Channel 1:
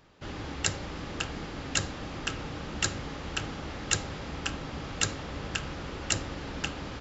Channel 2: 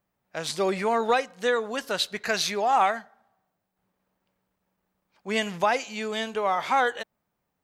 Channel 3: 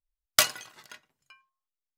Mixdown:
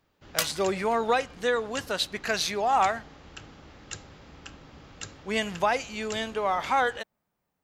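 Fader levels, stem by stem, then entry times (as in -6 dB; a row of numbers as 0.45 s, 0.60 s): -11.5 dB, -1.5 dB, -6.0 dB; 0.00 s, 0.00 s, 0.00 s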